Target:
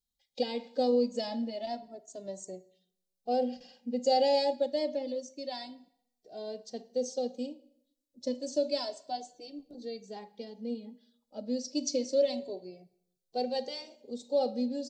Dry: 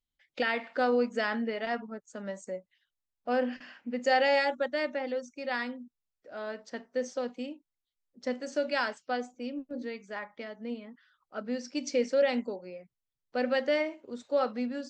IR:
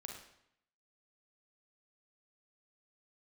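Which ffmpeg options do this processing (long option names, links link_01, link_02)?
-filter_complex "[0:a]firequalizer=gain_entry='entry(760,0);entry(1300,-24);entry(3900,6)':delay=0.05:min_phase=1,asplit=2[link_01][link_02];[1:a]atrim=start_sample=2205[link_03];[link_02][link_03]afir=irnorm=-1:irlink=0,volume=-8.5dB[link_04];[link_01][link_04]amix=inputs=2:normalize=0,asplit=2[link_05][link_06];[link_06]adelay=2.1,afreqshift=0.29[link_07];[link_05][link_07]amix=inputs=2:normalize=1"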